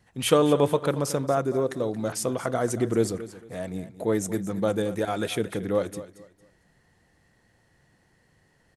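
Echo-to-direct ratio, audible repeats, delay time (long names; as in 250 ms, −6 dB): −14.5 dB, 2, 227 ms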